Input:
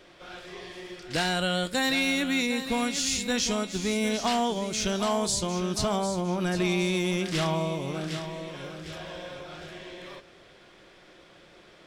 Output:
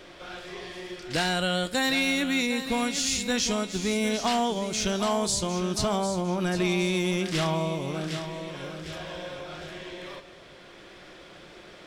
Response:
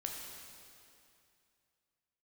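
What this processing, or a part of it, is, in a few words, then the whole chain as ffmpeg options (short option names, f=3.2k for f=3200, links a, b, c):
ducked reverb: -filter_complex "[0:a]asplit=3[a][b][c];[1:a]atrim=start_sample=2205[d];[b][d]afir=irnorm=-1:irlink=0[e];[c]apad=whole_len=523164[f];[e][f]sidechaincompress=threshold=-49dB:ratio=4:attack=16:release=1200,volume=3dB[g];[a][g]amix=inputs=2:normalize=0"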